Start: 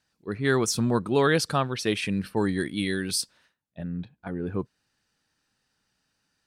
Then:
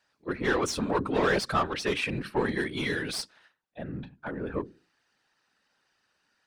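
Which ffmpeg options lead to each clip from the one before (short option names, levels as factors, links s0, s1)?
-filter_complex "[0:a]bandreject=f=60:t=h:w=6,bandreject=f=120:t=h:w=6,bandreject=f=180:t=h:w=6,bandreject=f=240:t=h:w=6,bandreject=f=300:t=h:w=6,bandreject=f=360:t=h:w=6,asplit=2[s0][s1];[s1]highpass=f=720:p=1,volume=8.91,asoftclip=type=tanh:threshold=0.316[s2];[s0][s2]amix=inputs=2:normalize=0,lowpass=f=2000:p=1,volume=0.501,afftfilt=real='hypot(re,im)*cos(2*PI*random(0))':imag='hypot(re,im)*sin(2*PI*random(1))':win_size=512:overlap=0.75"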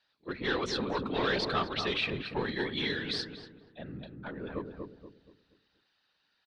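-filter_complex "[0:a]lowpass=f=3900:t=q:w=3.8,asplit=2[s0][s1];[s1]adelay=238,lowpass=f=960:p=1,volume=0.631,asplit=2[s2][s3];[s3]adelay=238,lowpass=f=960:p=1,volume=0.39,asplit=2[s4][s5];[s5]adelay=238,lowpass=f=960:p=1,volume=0.39,asplit=2[s6][s7];[s7]adelay=238,lowpass=f=960:p=1,volume=0.39,asplit=2[s8][s9];[s9]adelay=238,lowpass=f=960:p=1,volume=0.39[s10];[s2][s4][s6][s8][s10]amix=inputs=5:normalize=0[s11];[s0][s11]amix=inputs=2:normalize=0,volume=0.501"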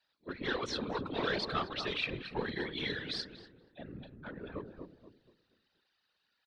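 -af "afftfilt=real='hypot(re,im)*cos(2*PI*random(0))':imag='hypot(re,im)*sin(2*PI*random(1))':win_size=512:overlap=0.75"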